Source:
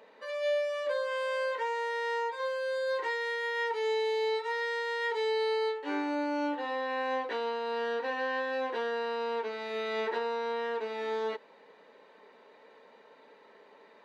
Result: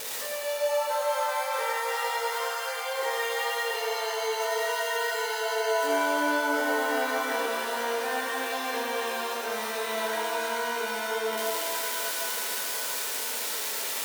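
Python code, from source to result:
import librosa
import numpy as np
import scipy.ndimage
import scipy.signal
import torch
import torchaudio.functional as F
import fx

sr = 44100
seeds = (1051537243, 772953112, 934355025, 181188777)

p1 = x + 0.5 * 10.0 ** (-31.5 / 20.0) * np.diff(np.sign(x), prepend=np.sign(x[:1]))
p2 = fx.steep_highpass(p1, sr, hz=520.0, slope=36, at=(9.95, 10.36), fade=0.02)
p3 = fx.over_compress(p2, sr, threshold_db=-44.0, ratio=-1.0)
p4 = p2 + F.gain(torch.from_numpy(p3), 2.0).numpy()
p5 = fx.wow_flutter(p4, sr, seeds[0], rate_hz=2.1, depth_cents=20.0)
p6 = p5 + fx.echo_single(p5, sr, ms=105, db=-6.5, dry=0)
p7 = fx.rev_shimmer(p6, sr, seeds[1], rt60_s=3.3, semitones=7, shimmer_db=-2, drr_db=1.0)
y = F.gain(torch.from_numpy(p7), -4.0).numpy()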